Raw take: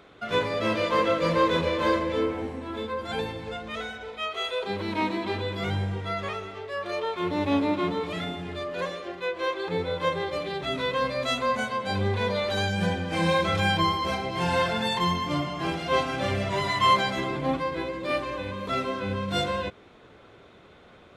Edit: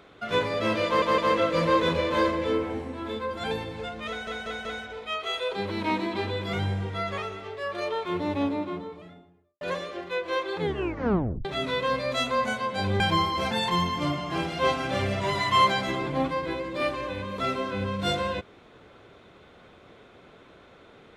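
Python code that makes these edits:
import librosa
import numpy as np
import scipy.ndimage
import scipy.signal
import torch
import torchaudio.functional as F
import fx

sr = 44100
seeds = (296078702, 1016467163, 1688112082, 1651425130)

y = fx.studio_fade_out(x, sr, start_s=6.93, length_s=1.79)
y = fx.edit(y, sr, fx.stutter(start_s=0.86, slice_s=0.16, count=3),
    fx.stutter(start_s=3.76, slice_s=0.19, count=4),
    fx.tape_stop(start_s=9.71, length_s=0.85),
    fx.cut(start_s=12.11, length_s=1.56),
    fx.cut(start_s=14.18, length_s=0.62), tone=tone)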